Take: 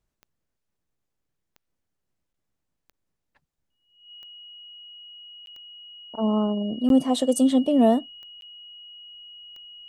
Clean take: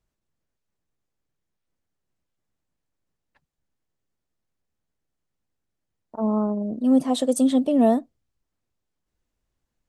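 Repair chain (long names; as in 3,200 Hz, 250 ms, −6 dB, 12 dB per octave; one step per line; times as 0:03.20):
click removal
notch filter 2,900 Hz, Q 30
repair the gap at 0:02.33/0:02.92/0:05.46/0:06.89/0:08.41, 12 ms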